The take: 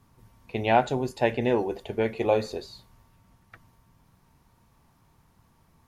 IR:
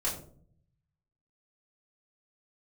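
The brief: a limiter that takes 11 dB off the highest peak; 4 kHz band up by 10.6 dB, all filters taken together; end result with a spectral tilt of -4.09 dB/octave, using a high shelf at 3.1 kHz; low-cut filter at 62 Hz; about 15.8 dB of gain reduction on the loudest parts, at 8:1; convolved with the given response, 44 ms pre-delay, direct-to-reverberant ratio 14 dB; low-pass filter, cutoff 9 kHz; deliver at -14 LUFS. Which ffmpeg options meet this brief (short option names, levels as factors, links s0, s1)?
-filter_complex "[0:a]highpass=62,lowpass=9000,highshelf=f=3100:g=7.5,equalizer=f=4000:t=o:g=8,acompressor=threshold=0.0282:ratio=8,alimiter=level_in=1.5:limit=0.0631:level=0:latency=1,volume=0.668,asplit=2[s0][s1];[1:a]atrim=start_sample=2205,adelay=44[s2];[s1][s2]afir=irnorm=-1:irlink=0,volume=0.1[s3];[s0][s3]amix=inputs=2:normalize=0,volume=16.8"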